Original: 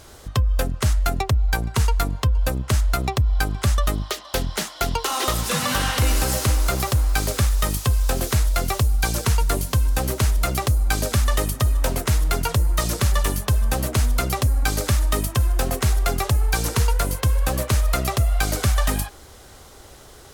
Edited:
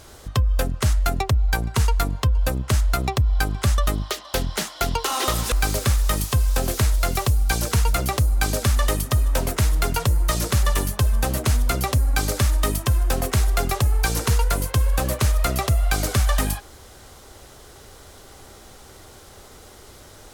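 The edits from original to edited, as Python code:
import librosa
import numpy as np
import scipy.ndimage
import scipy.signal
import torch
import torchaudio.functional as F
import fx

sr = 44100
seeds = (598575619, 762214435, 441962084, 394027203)

y = fx.edit(x, sr, fx.cut(start_s=5.52, length_s=1.53),
    fx.cut(start_s=9.46, length_s=0.96), tone=tone)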